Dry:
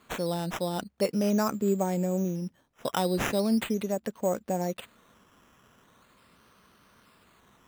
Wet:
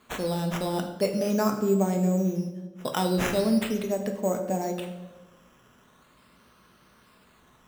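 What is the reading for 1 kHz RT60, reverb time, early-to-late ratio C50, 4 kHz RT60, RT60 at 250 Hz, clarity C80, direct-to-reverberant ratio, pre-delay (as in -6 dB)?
0.95 s, 1.2 s, 8.0 dB, 0.80 s, 1.3 s, 10.0 dB, 4.0 dB, 5 ms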